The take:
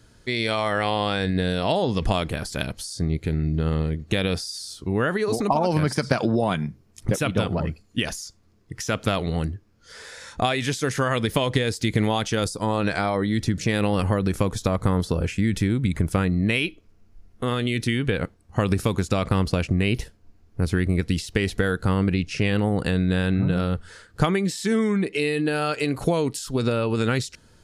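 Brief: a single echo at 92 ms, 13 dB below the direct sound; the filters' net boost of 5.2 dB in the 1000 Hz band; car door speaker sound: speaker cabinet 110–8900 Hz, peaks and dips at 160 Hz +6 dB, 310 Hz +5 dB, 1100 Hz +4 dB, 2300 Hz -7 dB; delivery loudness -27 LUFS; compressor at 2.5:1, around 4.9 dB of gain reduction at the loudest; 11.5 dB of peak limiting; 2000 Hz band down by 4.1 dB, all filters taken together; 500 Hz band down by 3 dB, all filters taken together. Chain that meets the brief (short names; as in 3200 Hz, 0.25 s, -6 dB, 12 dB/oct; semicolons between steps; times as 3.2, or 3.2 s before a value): bell 500 Hz -6.5 dB; bell 1000 Hz +8 dB; bell 2000 Hz -6 dB; compressor 2.5:1, threshold -24 dBFS; limiter -20.5 dBFS; speaker cabinet 110–8900 Hz, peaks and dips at 160 Hz +6 dB, 310 Hz +5 dB, 1100 Hz +4 dB, 2300 Hz -7 dB; echo 92 ms -13 dB; gain +3.5 dB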